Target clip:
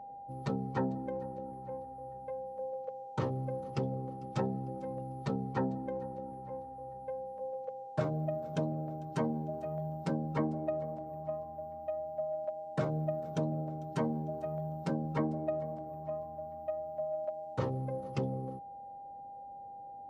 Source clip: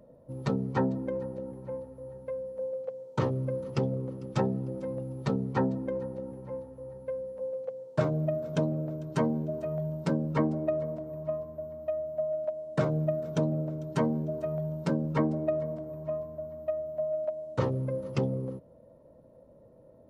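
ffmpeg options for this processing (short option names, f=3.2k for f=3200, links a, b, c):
-af "aeval=exprs='val(0)+0.0112*sin(2*PI*800*n/s)':c=same,volume=-5.5dB"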